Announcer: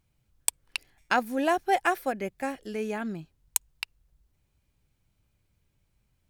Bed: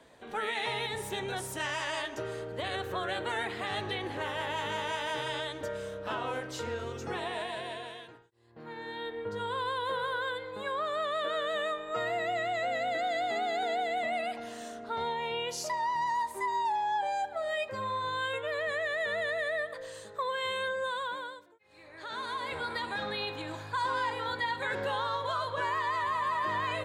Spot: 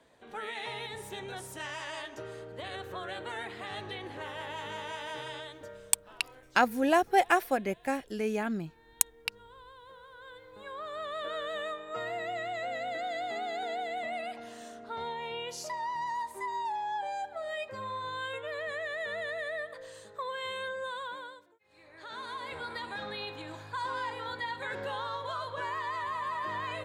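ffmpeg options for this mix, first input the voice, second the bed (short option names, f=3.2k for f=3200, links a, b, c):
-filter_complex "[0:a]adelay=5450,volume=0.5dB[a];[1:a]volume=10dB,afade=t=out:st=5.23:d=0.9:silence=0.199526,afade=t=in:st=10.13:d=1.19:silence=0.16788[b];[a][b]amix=inputs=2:normalize=0"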